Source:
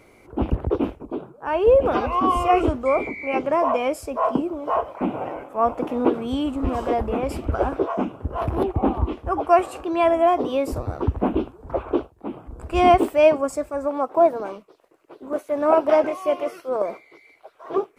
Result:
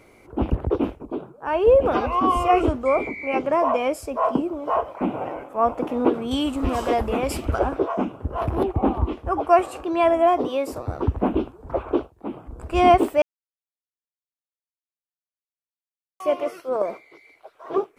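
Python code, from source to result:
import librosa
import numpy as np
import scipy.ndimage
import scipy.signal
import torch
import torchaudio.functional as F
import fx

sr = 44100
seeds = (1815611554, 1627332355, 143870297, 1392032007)

y = fx.high_shelf(x, sr, hz=2100.0, db=10.0, at=(6.31, 7.59))
y = fx.highpass(y, sr, hz=350.0, slope=6, at=(10.48, 10.88))
y = fx.edit(y, sr, fx.silence(start_s=13.22, length_s=2.98), tone=tone)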